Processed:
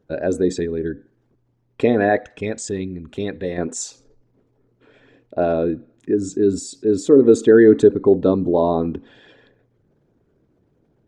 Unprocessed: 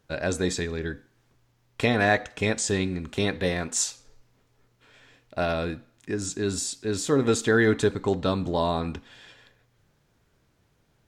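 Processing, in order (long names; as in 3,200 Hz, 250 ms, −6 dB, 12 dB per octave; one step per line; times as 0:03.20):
spectral envelope exaggerated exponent 1.5
parametric band 360 Hz +12 dB 2.4 octaves, from 0:02.19 +4 dB, from 0:03.58 +15 dB
level −3 dB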